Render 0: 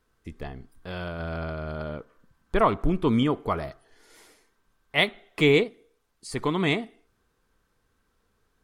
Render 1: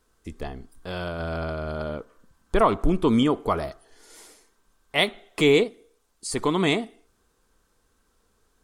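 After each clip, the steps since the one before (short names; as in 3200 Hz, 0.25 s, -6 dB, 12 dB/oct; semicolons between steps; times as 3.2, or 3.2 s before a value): ten-band EQ 125 Hz -6 dB, 2000 Hz -4 dB, 8000 Hz +6 dB; in parallel at -0.5 dB: limiter -16 dBFS, peak gain reduction 7 dB; on the sum: gain -1.5 dB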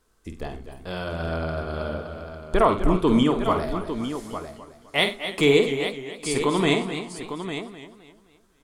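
on a send: tapped delay 49/94/246/852 ms -8/-18/-14/-9.5 dB; on the sum: warbling echo 0.259 s, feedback 38%, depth 105 cents, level -11.5 dB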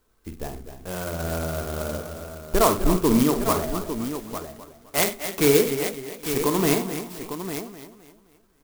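clock jitter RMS 0.082 ms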